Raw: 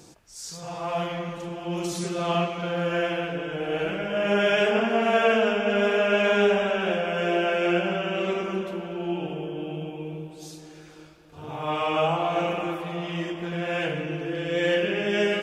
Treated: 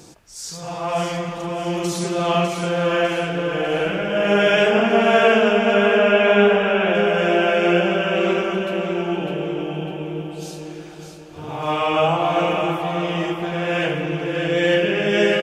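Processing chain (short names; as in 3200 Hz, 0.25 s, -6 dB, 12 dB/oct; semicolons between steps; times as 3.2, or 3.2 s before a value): 5.74–6.95 band shelf 6800 Hz -13.5 dB; feedback echo 0.602 s, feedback 43%, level -7 dB; gain +5.5 dB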